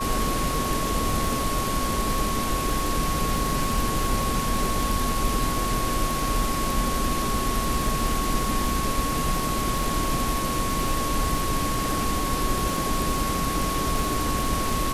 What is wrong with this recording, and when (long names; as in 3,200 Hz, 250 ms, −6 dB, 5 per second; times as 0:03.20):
surface crackle 36 per second −28 dBFS
whistle 1,100 Hz −28 dBFS